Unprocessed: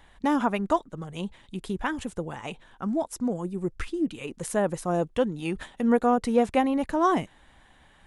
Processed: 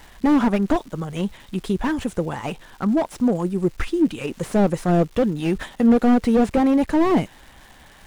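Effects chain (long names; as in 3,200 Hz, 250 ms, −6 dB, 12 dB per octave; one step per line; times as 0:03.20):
surface crackle 460 per second −45 dBFS
slew-rate limiting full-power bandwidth 32 Hz
level +8.5 dB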